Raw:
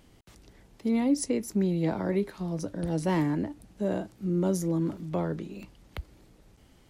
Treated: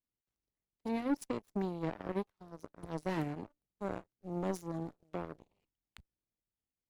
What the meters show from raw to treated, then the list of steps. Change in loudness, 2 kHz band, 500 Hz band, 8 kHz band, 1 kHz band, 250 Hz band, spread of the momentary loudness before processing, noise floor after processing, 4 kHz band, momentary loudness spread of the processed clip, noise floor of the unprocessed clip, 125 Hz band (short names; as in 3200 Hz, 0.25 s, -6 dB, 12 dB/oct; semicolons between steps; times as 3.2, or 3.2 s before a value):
-10.0 dB, -7.0 dB, -9.0 dB, -16.5 dB, -5.0 dB, -11.0 dB, 14 LU, under -85 dBFS, -10.0 dB, 12 LU, -59 dBFS, -12.5 dB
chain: added harmonics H 3 -10 dB, 7 -41 dB, 8 -42 dB, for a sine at -16 dBFS; soft clip -22 dBFS, distortion -13 dB; gain -1.5 dB